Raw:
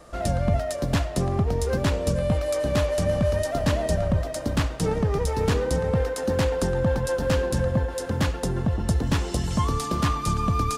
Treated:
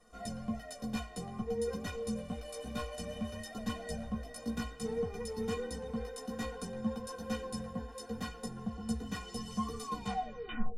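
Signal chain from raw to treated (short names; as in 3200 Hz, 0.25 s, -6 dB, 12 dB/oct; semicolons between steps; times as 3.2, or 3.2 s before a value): tape stop at the end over 0.96 s; chorus voices 2, 0.56 Hz, delay 13 ms, depth 3.8 ms; metallic resonator 220 Hz, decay 0.2 s, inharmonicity 0.03; gain +2 dB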